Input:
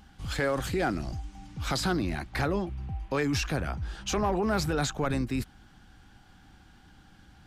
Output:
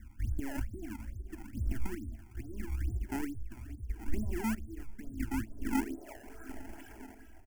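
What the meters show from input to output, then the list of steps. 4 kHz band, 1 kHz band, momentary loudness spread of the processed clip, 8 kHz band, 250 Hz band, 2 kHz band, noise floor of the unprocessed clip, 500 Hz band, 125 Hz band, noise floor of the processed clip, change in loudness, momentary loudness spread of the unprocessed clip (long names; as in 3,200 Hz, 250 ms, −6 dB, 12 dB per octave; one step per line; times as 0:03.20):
−20.5 dB, −13.0 dB, 14 LU, −12.5 dB, −5.5 dB, −12.5 dB, −57 dBFS, −16.5 dB, −7.0 dB, −53 dBFS, −9.0 dB, 10 LU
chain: stylus tracing distortion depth 0.083 ms
feedback delay with all-pass diffusion 483 ms, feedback 51%, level −9.5 dB
low-pass filter sweep 160 Hz → 3,400 Hz, 0:05.57–0:06.78
low-pass filter 4,300 Hz
tuned comb filter 110 Hz, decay 0.95 s, harmonics all, mix 80%
reverb reduction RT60 1.6 s
downward compressor, threshold −42 dBFS, peak gain reduction 9 dB
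comb filter 3.1 ms, depth 81%
square-wave tremolo 0.77 Hz, depth 60%, duty 50%
sample-and-hold swept by an LFO 22×, swing 160% 2.3 Hz
phaser with its sweep stopped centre 770 Hz, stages 8
level +16.5 dB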